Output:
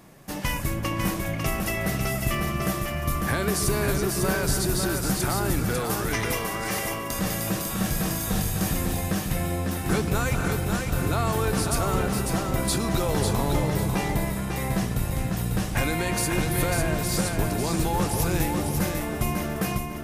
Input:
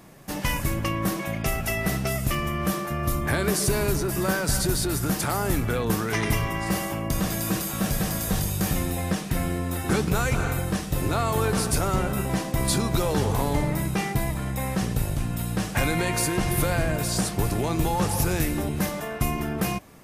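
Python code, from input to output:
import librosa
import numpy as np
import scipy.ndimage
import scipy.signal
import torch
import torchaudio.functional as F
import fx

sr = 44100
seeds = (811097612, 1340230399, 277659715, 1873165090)

y = fx.bass_treble(x, sr, bass_db=-10, treble_db=3, at=(5.79, 7.19))
y = fx.echo_feedback(y, sr, ms=548, feedback_pct=26, wet_db=-4.5)
y = y * 10.0 ** (-1.5 / 20.0)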